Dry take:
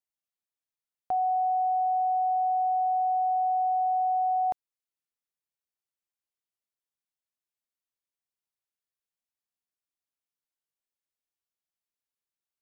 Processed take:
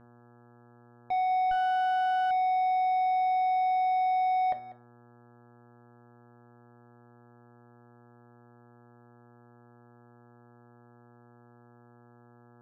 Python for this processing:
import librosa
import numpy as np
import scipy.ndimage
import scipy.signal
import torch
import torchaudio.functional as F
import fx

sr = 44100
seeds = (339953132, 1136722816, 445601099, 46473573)

y = fx.notch(x, sr, hz=630.0, q=12.0)
y = fx.leveller(y, sr, passes=5)
y = fx.dmg_buzz(y, sr, base_hz=120.0, harmonics=14, level_db=-53.0, tilt_db=-4, odd_only=False)
y = 10.0 ** (-23.5 / 20.0) * np.tanh(y / 10.0 ** (-23.5 / 20.0))
y = fx.air_absorb(y, sr, metres=390.0)
y = y + 10.0 ** (-17.0 / 20.0) * np.pad(y, (int(194 * sr / 1000.0), 0))[:len(y)]
y = fx.rev_fdn(y, sr, rt60_s=0.31, lf_ratio=1.0, hf_ratio=0.9, size_ms=24.0, drr_db=7.5)
y = fx.running_max(y, sr, window=9, at=(1.51, 2.31))
y = y * librosa.db_to_amplitude(-3.5)